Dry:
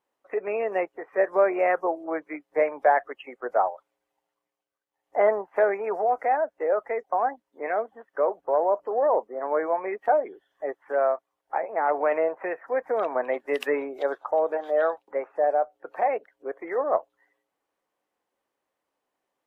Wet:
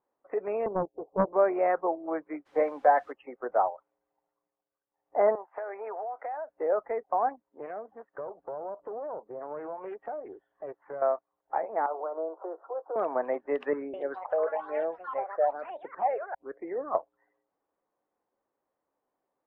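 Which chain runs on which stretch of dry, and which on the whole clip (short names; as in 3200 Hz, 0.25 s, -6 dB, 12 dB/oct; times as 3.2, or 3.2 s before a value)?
0.66–1.33 steep low-pass 780 Hz 48 dB/oct + Doppler distortion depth 0.43 ms
2.45–3.11 comb 3.9 ms, depth 48% + added noise blue -42 dBFS
5.35–6.5 HPF 650 Hz + compressor 5:1, threshold -31 dBFS
7.29–11.02 compressor 3:1, threshold -37 dBFS + Doppler distortion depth 0.14 ms
11.86–12.96 compressor 1.5:1, threshold -38 dBFS + Chebyshev band-pass 320–1400 Hz, order 5 + doubler 19 ms -13.5 dB
13.73–16.95 echoes that change speed 0.205 s, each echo +5 st, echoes 3, each echo -6 dB + phaser stages 6, 1.1 Hz, lowest notch 230–1300 Hz
whole clip: LPF 1200 Hz 12 dB/oct; dynamic EQ 500 Hz, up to -3 dB, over -35 dBFS, Q 1.1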